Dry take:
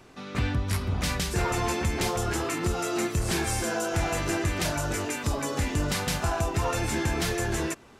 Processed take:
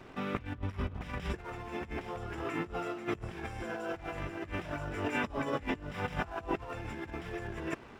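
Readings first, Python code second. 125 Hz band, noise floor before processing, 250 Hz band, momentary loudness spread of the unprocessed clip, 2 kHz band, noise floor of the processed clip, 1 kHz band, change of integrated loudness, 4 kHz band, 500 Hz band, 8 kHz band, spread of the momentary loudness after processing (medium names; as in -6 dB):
-12.0 dB, -48 dBFS, -8.0 dB, 2 LU, -8.0 dB, -51 dBFS, -8.0 dB, -10.0 dB, -15.5 dB, -8.0 dB, -26.5 dB, 7 LU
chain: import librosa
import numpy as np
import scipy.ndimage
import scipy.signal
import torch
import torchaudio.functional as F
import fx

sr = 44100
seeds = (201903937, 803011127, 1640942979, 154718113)

y = fx.over_compress(x, sr, threshold_db=-33.0, ratio=-0.5)
y = scipy.signal.savgol_filter(y, 25, 4, mode='constant')
y = np.sign(y) * np.maximum(np.abs(y) - 10.0 ** (-54.5 / 20.0), 0.0)
y = F.gain(torch.from_numpy(y), -2.0).numpy()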